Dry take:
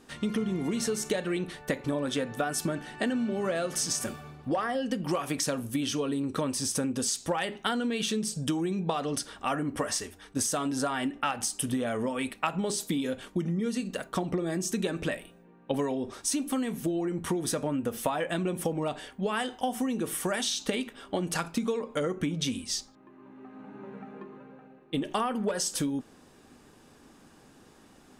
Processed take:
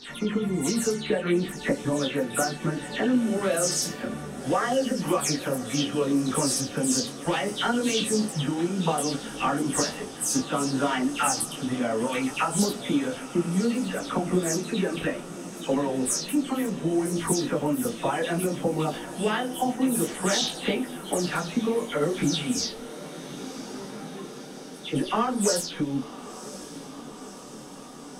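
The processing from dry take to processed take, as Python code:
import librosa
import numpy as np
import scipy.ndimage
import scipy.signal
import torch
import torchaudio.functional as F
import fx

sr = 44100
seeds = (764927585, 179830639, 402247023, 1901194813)

y = fx.spec_delay(x, sr, highs='early', ms=189)
y = fx.echo_diffused(y, sr, ms=1039, feedback_pct=74, wet_db=-15.0)
y = fx.detune_double(y, sr, cents=22)
y = y * 10.0 ** (8.0 / 20.0)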